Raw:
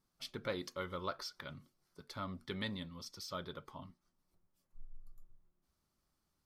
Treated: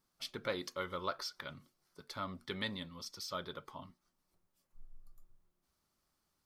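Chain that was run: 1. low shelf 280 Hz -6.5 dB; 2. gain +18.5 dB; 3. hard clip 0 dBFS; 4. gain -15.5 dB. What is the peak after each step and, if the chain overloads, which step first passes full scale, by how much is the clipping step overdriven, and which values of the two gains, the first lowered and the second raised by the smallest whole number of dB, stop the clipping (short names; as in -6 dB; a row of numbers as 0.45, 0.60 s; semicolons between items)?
-24.0, -5.5, -5.5, -21.0 dBFS; no overload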